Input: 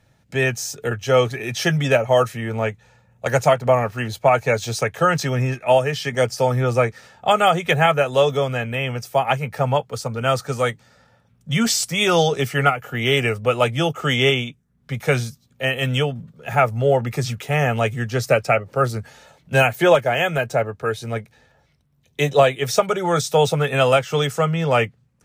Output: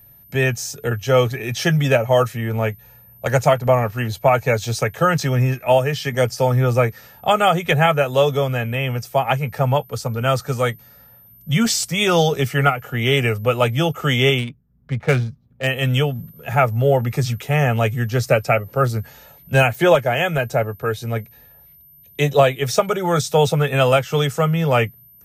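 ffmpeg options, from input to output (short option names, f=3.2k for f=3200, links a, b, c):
-filter_complex "[0:a]lowshelf=f=110:g=9.5,aeval=exprs='val(0)+0.00501*sin(2*PI*13000*n/s)':c=same,asettb=1/sr,asplit=3[a][b][c];[a]atrim=end=14.384[d];[b]atrim=start=14.38:end=15.67,asetpts=PTS-STARTPTS,afade=t=in:d=0.004:c=qsin,afade=t=out:st=1.286:d=0.004:c=qsin,adynamicsmooth=sensitivity=3:basefreq=1.4k[e];[c]atrim=start=15.666[f];[d][e]acrossfade=d=0.004:c1=hsin:c2=qsin[g];[g][f]acrossfade=d=0.004:c1=qsin:c2=hsin"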